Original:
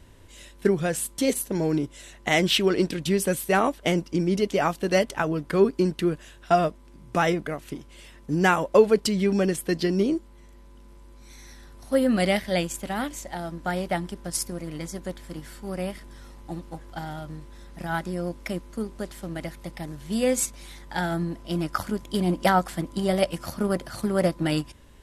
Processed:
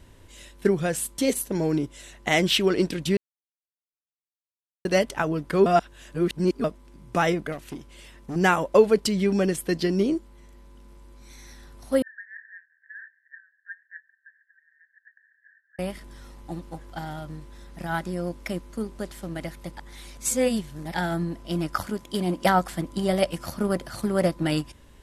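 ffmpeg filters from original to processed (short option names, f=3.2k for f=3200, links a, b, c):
-filter_complex "[0:a]asettb=1/sr,asplit=3[a][b][c];[a]atrim=end=7.524[d];[b]atrim=start=7.52:end=8.36,asetpts=PTS-STARTPTS,afade=t=in:d=0.004:c=qsin,afade=t=out:st=0.836:d=0.004:c=qsin,asoftclip=type=hard:threshold=-29dB[e];[c]atrim=start=8.356[f];[d][e]acrossfade=d=0.004:c1=hsin:c2=qsin[g];[g][f]acrossfade=d=0.004:c1=qsin:c2=hsin,asettb=1/sr,asplit=3[h][i][j];[h]atrim=end=12.024[k];[i]atrim=start=12.02:end=15.79,asetpts=PTS-STARTPTS,afade=t=in:d=0.004:c=qsin,afade=t=out:st=3.766:d=0.004:c=qsin,asuperpass=centerf=1700:order=8:qfactor=6.3[l];[j]atrim=start=15.786[m];[k][l]acrossfade=d=0.004:c1=hsin:c2=qsin[n];[n][m]acrossfade=d=0.004:c1=qsin:c2=hsin,asettb=1/sr,asplit=3[o][p][q];[o]atrim=end=21.864[r];[p]atrim=start=21.86:end=22.45,asetpts=PTS-STARTPTS,afade=t=in:d=0.004:c=qsin,afade=t=out:st=0.586:d=0.004:c=qsin,lowshelf=f=120:g=-9.5[s];[q]atrim=start=22.446[t];[r][s]acrossfade=d=0.004:c1=hsin:c2=qsin[u];[u][t]acrossfade=d=0.004:c1=qsin:c2=hsin,asplit=7[v][w][x][y][z][aa][ab];[v]atrim=end=3.17,asetpts=PTS-STARTPTS,afade=t=out:st=3.166:d=0.004:c=hsin[ac];[w]atrim=start=3.17:end=4.85,asetpts=PTS-STARTPTS,volume=0[ad];[x]atrim=start=4.85:end=5.662,asetpts=PTS-STARTPTS,afade=t=in:d=0.004:c=hsin[ae];[y]atrim=start=5.658:end=6.642,asetpts=PTS-STARTPTS,areverse[af];[z]atrim=start=6.638:end=19.772[ag];[aa]atrim=start=19.768:end=20.942,asetpts=PTS-STARTPTS,areverse[ah];[ab]atrim=start=20.938[ai];[ac][ad][ae]concat=n=3:v=0:a=1[aj];[aj][af]acrossfade=d=0.004:c1=hsin:c2=hsin[ak];[ak][ag]acrossfade=d=0.004:c1=hsin:c2=hsin[al];[al][ah]acrossfade=d=0.004:c1=hsin:c2=hsin[am];[am][ai]acrossfade=d=0.004:c1=hsin:c2=hsin"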